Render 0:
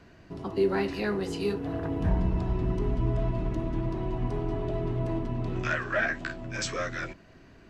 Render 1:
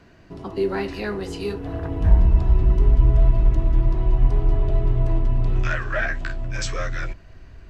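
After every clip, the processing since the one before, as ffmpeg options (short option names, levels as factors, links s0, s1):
-af "asubboost=boost=8:cutoff=76,volume=1.33"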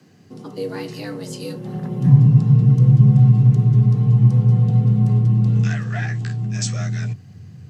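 -af "bass=f=250:g=9,treble=f=4000:g=15,afreqshift=86,volume=0.473"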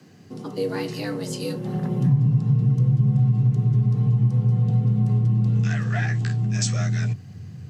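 -af "acompressor=threshold=0.1:ratio=3,volume=1.19"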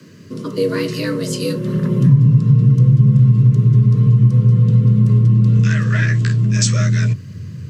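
-af "asuperstop=centerf=780:order=12:qfactor=2.9,volume=2.51"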